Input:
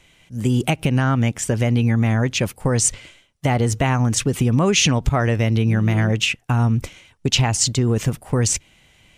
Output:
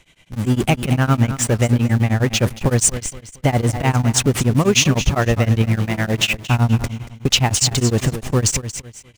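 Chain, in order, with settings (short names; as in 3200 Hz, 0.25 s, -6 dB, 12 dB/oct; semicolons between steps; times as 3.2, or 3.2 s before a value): 5.62–6.14 low shelf 340 Hz -7 dB; in parallel at -8.5 dB: Schmitt trigger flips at -32 dBFS; on the sum: feedback echo 0.232 s, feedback 29%, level -11 dB; beating tremolo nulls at 9.8 Hz; gain +2.5 dB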